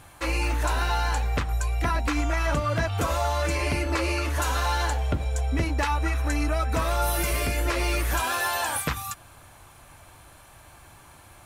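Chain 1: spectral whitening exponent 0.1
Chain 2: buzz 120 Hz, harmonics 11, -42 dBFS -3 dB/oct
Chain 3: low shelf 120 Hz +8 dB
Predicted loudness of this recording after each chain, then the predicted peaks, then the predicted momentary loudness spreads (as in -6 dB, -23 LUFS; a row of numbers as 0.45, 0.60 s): -22.5, -26.0, -22.5 LUFS; -8.0, -14.5, -11.0 dBFS; 3, 17, 3 LU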